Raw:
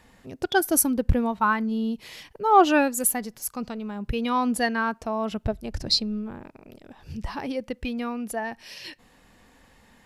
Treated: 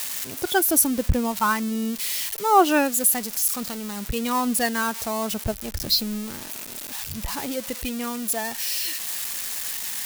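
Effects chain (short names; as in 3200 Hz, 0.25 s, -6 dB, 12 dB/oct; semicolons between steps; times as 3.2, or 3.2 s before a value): switching spikes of -19.5 dBFS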